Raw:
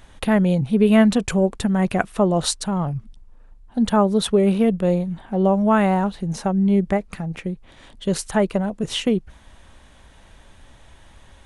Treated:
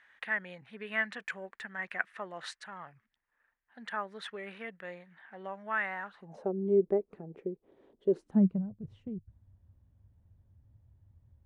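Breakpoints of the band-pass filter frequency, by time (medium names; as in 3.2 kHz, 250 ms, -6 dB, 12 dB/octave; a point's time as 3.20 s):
band-pass filter, Q 4.9
6.06 s 1.8 kHz
6.49 s 400 Hz
8.11 s 400 Hz
8.77 s 100 Hz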